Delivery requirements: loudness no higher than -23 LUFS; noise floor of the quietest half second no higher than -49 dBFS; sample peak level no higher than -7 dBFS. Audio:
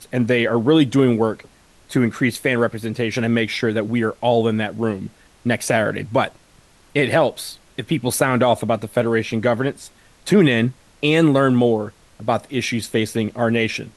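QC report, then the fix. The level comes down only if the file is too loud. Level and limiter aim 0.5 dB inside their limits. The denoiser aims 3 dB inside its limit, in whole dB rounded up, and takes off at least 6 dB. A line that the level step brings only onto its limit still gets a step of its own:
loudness -19.5 LUFS: fail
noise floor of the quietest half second -52 dBFS: pass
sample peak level -5.0 dBFS: fail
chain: trim -4 dB

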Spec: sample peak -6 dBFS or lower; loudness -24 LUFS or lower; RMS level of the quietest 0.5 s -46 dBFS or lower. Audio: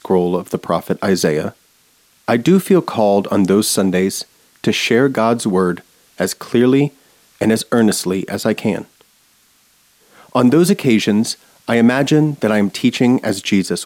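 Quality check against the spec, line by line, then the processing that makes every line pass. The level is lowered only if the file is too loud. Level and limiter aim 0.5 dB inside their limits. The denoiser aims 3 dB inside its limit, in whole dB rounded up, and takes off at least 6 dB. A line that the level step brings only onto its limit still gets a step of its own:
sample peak -3.0 dBFS: fail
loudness -16.0 LUFS: fail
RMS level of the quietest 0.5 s -55 dBFS: pass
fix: trim -8.5 dB

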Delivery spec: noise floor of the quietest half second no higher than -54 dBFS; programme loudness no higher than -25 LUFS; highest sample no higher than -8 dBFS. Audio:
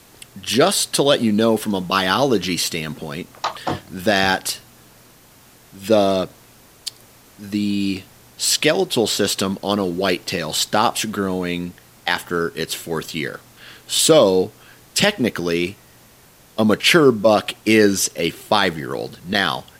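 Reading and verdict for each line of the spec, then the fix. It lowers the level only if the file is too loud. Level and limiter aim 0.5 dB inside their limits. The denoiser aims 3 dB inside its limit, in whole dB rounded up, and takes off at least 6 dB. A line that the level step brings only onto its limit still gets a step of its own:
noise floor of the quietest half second -49 dBFS: fail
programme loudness -19.0 LUFS: fail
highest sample -1.5 dBFS: fail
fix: trim -6.5 dB; peak limiter -8.5 dBFS

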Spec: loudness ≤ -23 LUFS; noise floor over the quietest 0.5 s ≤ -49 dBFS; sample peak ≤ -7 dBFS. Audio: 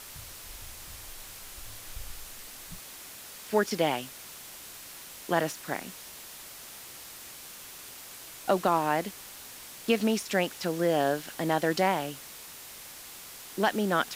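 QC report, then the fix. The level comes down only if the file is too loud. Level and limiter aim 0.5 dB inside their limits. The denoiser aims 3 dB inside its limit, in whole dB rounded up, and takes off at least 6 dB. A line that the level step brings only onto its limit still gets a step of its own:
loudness -29.5 LUFS: pass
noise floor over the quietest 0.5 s -46 dBFS: fail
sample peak -11.5 dBFS: pass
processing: noise reduction 6 dB, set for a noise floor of -46 dBFS

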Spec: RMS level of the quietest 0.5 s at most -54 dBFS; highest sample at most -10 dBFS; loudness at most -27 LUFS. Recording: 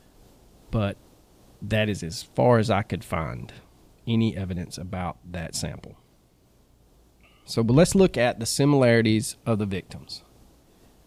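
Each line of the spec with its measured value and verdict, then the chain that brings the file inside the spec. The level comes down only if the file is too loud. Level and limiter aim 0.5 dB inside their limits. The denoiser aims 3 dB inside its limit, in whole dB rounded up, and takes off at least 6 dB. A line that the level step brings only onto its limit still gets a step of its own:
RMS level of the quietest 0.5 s -60 dBFS: pass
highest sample -5.5 dBFS: fail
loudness -24.0 LUFS: fail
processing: trim -3.5 dB; peak limiter -10.5 dBFS

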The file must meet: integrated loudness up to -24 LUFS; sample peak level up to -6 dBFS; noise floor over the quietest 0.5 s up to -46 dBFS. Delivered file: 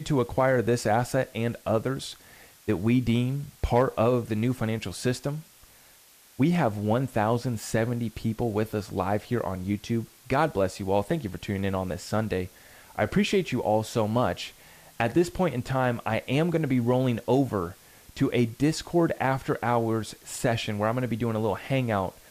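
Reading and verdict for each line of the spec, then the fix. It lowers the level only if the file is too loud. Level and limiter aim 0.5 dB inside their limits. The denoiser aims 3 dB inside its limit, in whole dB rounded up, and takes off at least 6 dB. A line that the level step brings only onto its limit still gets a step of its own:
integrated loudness -27.0 LUFS: pass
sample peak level -12.0 dBFS: pass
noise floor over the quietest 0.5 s -55 dBFS: pass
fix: none needed

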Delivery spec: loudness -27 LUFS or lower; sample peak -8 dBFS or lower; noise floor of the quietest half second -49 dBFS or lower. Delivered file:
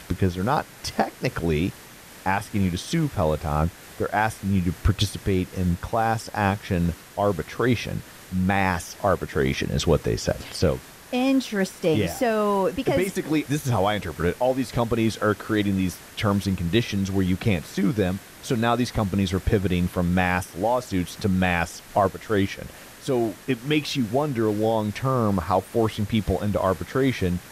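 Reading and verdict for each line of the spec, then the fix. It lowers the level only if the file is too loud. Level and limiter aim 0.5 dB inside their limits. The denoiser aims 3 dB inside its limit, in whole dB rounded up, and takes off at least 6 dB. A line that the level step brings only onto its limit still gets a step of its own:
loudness -24.5 LUFS: fail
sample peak -8.5 dBFS: pass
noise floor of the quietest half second -45 dBFS: fail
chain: noise reduction 6 dB, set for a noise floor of -45 dBFS; trim -3 dB

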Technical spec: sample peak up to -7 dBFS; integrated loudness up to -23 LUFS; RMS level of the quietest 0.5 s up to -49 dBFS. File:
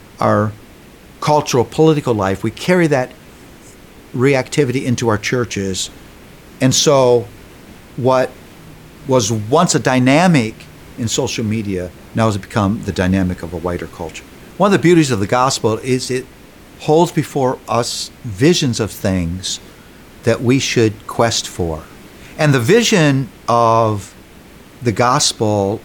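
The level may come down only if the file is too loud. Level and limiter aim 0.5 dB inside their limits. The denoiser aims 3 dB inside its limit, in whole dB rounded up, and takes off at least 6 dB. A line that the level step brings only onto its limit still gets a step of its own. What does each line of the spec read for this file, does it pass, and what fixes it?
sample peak -1.0 dBFS: fail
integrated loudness -15.5 LUFS: fail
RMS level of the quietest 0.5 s -41 dBFS: fail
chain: noise reduction 6 dB, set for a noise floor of -41 dBFS; trim -8 dB

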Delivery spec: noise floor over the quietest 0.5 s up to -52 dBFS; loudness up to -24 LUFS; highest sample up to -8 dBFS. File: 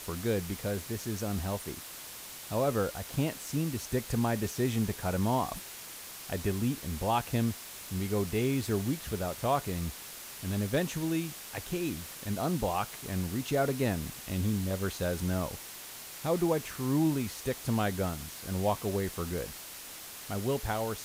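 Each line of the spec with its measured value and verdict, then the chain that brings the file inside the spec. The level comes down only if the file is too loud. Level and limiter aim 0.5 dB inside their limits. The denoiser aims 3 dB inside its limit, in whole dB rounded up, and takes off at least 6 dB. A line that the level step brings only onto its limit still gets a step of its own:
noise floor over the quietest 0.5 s -45 dBFS: fail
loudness -33.0 LUFS: pass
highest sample -16.5 dBFS: pass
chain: noise reduction 10 dB, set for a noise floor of -45 dBFS

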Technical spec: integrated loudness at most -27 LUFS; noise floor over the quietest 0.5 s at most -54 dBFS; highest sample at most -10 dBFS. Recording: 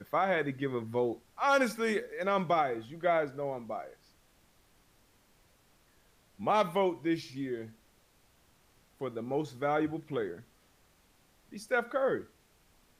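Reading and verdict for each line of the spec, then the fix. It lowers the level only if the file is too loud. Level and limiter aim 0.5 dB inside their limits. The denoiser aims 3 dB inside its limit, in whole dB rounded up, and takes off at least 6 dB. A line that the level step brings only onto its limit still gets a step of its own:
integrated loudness -32.0 LUFS: pass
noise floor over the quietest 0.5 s -66 dBFS: pass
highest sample -16.5 dBFS: pass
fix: none needed

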